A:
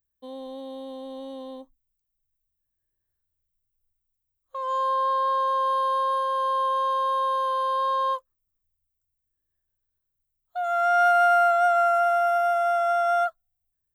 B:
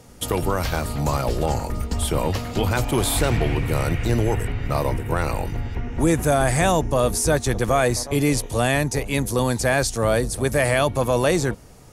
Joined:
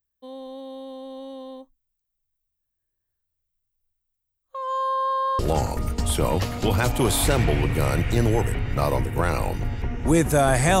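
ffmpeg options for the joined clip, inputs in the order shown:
-filter_complex "[0:a]apad=whole_dur=10.8,atrim=end=10.8,atrim=end=5.392[s0];[1:a]atrim=start=1.318:end=6.73[s1];[s0][s1]acrossfade=d=0.004:c1=hsin:c2=hsin"

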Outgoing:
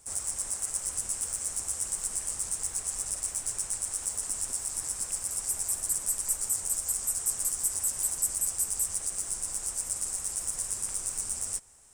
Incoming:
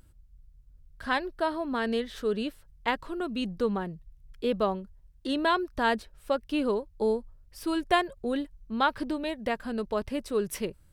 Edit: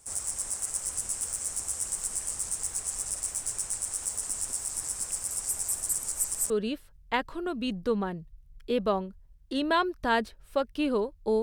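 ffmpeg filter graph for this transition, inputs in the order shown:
-filter_complex "[0:a]apad=whole_dur=11.42,atrim=end=11.42,asplit=2[s0][s1];[s0]atrim=end=6.032[s2];[s1]atrim=start=6.028:end=6.502,asetpts=PTS-STARTPTS,areverse[s3];[1:a]atrim=start=2.238:end=7.16[s4];[s2][s3]acrossfade=d=0.004:c1=hsin:c2=hsin[s5];[s5][s4]acrossfade=d=0.004:c1=hsin:c2=hsin"

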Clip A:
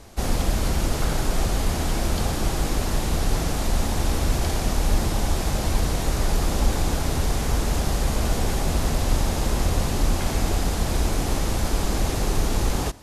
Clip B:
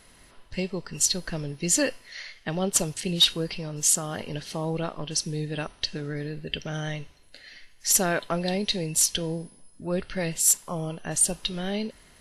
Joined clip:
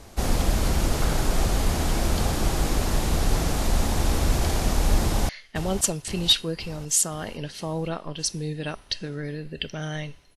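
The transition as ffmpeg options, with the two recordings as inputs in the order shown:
-filter_complex "[0:a]apad=whole_dur=10.36,atrim=end=10.36,atrim=end=5.292[s0];[1:a]atrim=start=2.208:end=7.28[s1];[s0][s1]acrossfade=d=0.004:c1=hsin:c2=hsin,asplit=2[s2][s3];[s3]afade=t=in:st=5.03:d=0.01,afade=t=out:st=5.29:d=0.01,aecho=0:1:520|1040|1560|2080|2600|3120|3640:0.334965|0.200979|0.120588|0.0723525|0.0434115|0.0260469|0.0156281[s4];[s2][s4]amix=inputs=2:normalize=0"

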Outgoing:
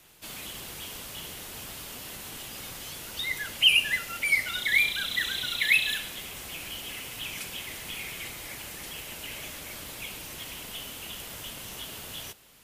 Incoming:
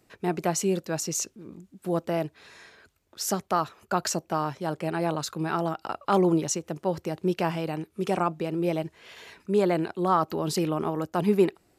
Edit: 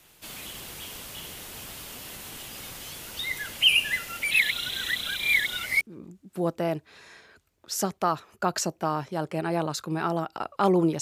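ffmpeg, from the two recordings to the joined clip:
-filter_complex "[0:a]apad=whole_dur=11.01,atrim=end=11.01,asplit=2[s0][s1];[s0]atrim=end=4.312[s2];[s1]atrim=start=4.308:end=5.812,asetpts=PTS-STARTPTS,areverse[s3];[1:a]atrim=start=1.298:end=6.5[s4];[s2][s3]acrossfade=d=0.004:c1=hsin:c2=hsin[s5];[s5][s4]acrossfade=d=0.004:c1=hsin:c2=hsin"

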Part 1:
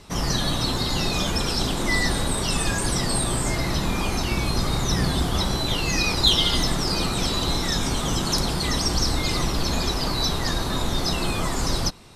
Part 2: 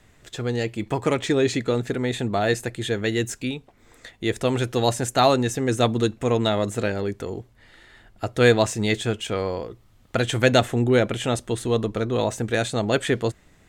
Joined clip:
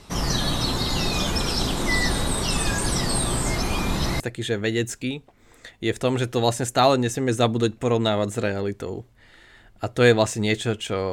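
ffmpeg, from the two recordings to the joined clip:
-filter_complex "[0:a]apad=whole_dur=11.12,atrim=end=11.12,asplit=2[s0][s1];[s0]atrim=end=3.602[s2];[s1]atrim=start=3.598:end=4.202,asetpts=PTS-STARTPTS,areverse[s3];[1:a]atrim=start=2.598:end=9.52[s4];[s2][s3]acrossfade=d=0.004:c1=hsin:c2=hsin[s5];[s5][s4]acrossfade=d=0.004:c1=hsin:c2=hsin"

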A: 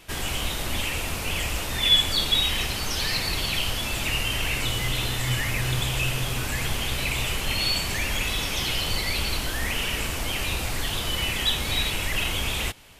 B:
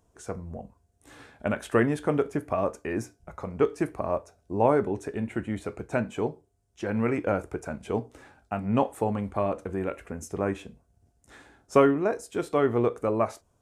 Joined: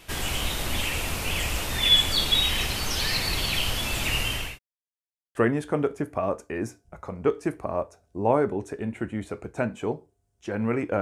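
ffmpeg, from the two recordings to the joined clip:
-filter_complex "[0:a]apad=whole_dur=11.01,atrim=end=11.01,asplit=2[s0][s1];[s0]atrim=end=4.59,asetpts=PTS-STARTPTS,afade=t=out:st=4.14:d=0.45:c=qsin[s2];[s1]atrim=start=4.59:end=5.35,asetpts=PTS-STARTPTS,volume=0[s3];[1:a]atrim=start=1.7:end=7.36,asetpts=PTS-STARTPTS,afade=t=in:d=0.004:c=hsin[s4];[s2][s3][s4]concat=n=3:v=0:a=1"

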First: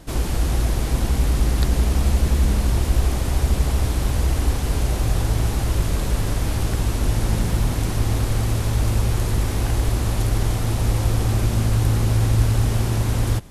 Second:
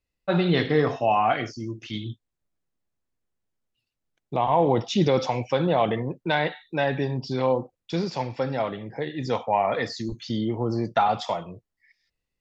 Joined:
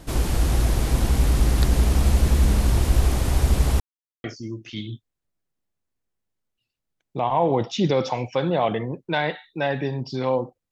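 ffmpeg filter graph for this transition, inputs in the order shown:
-filter_complex "[0:a]apad=whole_dur=10.71,atrim=end=10.71,asplit=2[s0][s1];[s0]atrim=end=3.8,asetpts=PTS-STARTPTS,afade=t=out:st=3.796:d=0.004:c=hsin[s2];[s1]atrim=start=3.8:end=4.24,asetpts=PTS-STARTPTS,volume=0[s3];[1:a]atrim=start=1.41:end=7.88,asetpts=PTS-STARTPTS,afade=t=in:d=0.004:c=hsin[s4];[s2][s3][s4]concat=n=3:v=0:a=1"

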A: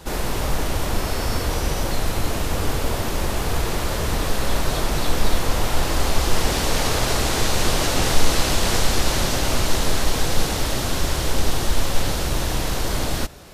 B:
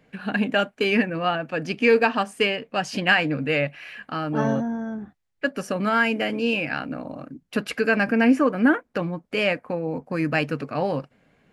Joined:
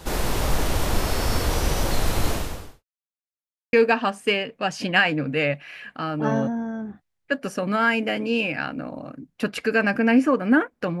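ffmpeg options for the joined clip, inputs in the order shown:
-filter_complex "[0:a]apad=whole_dur=11,atrim=end=11,asplit=2[s0][s1];[s0]atrim=end=2.84,asetpts=PTS-STARTPTS,afade=t=out:st=2.3:d=0.54:c=qua[s2];[s1]atrim=start=2.84:end=3.73,asetpts=PTS-STARTPTS,volume=0[s3];[1:a]atrim=start=1.86:end=9.13,asetpts=PTS-STARTPTS,afade=t=in:d=0.004:c=hsin[s4];[s2][s3][s4]concat=n=3:v=0:a=1"

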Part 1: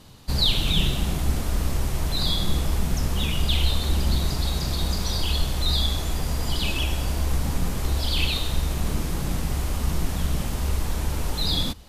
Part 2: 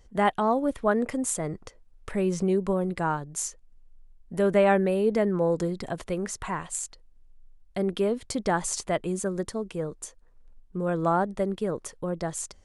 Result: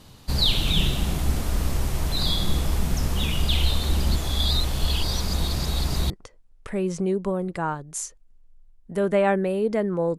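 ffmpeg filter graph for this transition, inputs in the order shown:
-filter_complex "[0:a]apad=whole_dur=10.18,atrim=end=10.18,asplit=2[s0][s1];[s0]atrim=end=4.162[s2];[s1]atrim=start=4.158:end=6.102,asetpts=PTS-STARTPTS,areverse[s3];[1:a]atrim=start=1.518:end=5.6[s4];[s2][s3]acrossfade=d=0.004:c1=hsin:c2=hsin[s5];[s5][s4]acrossfade=d=0.004:c1=hsin:c2=hsin"

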